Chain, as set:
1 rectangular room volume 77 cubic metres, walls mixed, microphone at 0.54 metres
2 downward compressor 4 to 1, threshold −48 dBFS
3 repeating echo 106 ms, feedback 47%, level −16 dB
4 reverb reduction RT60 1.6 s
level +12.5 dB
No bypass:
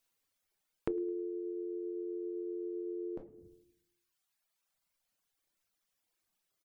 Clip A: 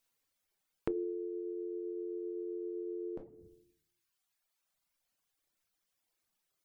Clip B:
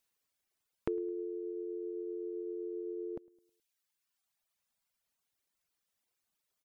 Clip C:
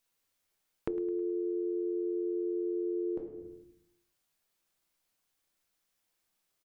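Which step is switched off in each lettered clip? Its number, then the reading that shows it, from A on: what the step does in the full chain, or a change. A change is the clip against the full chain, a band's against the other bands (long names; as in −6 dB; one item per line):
3, change in momentary loudness spread −1 LU
1, change in momentary loudness spread −2 LU
4, change in crest factor −5.5 dB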